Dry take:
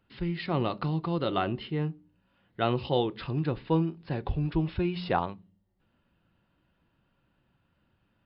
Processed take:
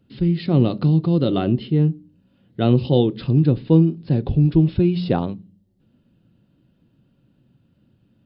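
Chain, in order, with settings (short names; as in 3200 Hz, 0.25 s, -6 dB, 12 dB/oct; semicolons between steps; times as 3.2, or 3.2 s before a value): graphic EQ 125/250/500/1000/2000/4000 Hz +10/+10/+4/-7/-5/+4 dB; gain +3 dB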